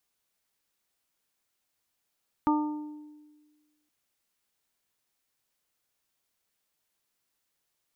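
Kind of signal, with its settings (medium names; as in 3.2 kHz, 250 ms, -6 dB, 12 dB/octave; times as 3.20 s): additive tone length 1.42 s, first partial 300 Hz, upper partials -18/-2/-8 dB, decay 1.49 s, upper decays 0.84/0.83/0.57 s, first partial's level -21.5 dB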